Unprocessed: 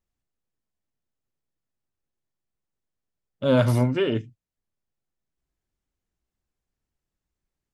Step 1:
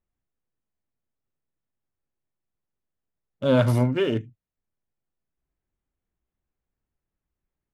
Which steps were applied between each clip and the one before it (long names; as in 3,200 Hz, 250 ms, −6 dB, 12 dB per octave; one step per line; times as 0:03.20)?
adaptive Wiener filter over 9 samples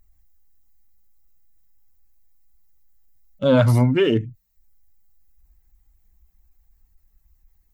spectral dynamics exaggerated over time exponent 1.5
envelope flattener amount 50%
level +4 dB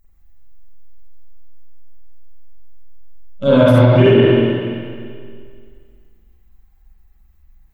spring reverb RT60 2.1 s, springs 43/48 ms, chirp 30 ms, DRR −9.5 dB
boost into a limiter +1 dB
level −1 dB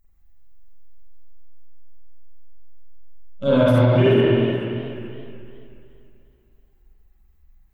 feedback echo with a swinging delay time 429 ms, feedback 34%, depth 105 cents, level −14 dB
level −5.5 dB